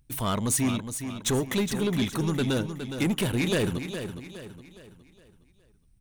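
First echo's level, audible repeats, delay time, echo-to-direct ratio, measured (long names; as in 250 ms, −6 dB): −9.0 dB, 4, 414 ms, −8.0 dB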